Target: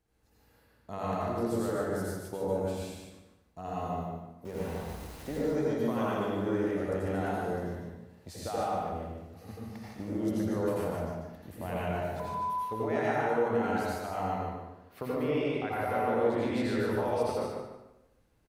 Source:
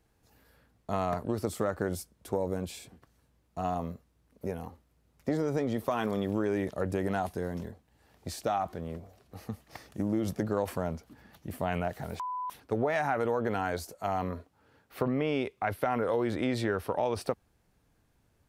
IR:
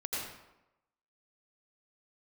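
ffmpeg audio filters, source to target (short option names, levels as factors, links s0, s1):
-filter_complex "[0:a]asettb=1/sr,asplit=3[s0][s1][s2];[s0]atrim=end=4.454[s3];[s1]atrim=start=4.45:end=5.29,asetpts=PTS-STARTPTS,afade=t=in:d=0.004:c=qsin,afade=t=out:st=0.836:d=0.004:c=qsin,aeval=exprs='val(0)+0.5*0.0141*sgn(val(0))':c=same[s4];[s2]atrim=start=5.286[s5];[s3][s4]acrossfade=d=0.004:c1=hsin:c2=qsin[s6];[s6][s5]acrossfade=d=0.004:c1=qsin:c2=hsin,aecho=1:1:148|296|444:0.562|0.141|0.0351[s7];[1:a]atrim=start_sample=2205[s8];[s7][s8]afir=irnorm=-1:irlink=0,volume=0.531"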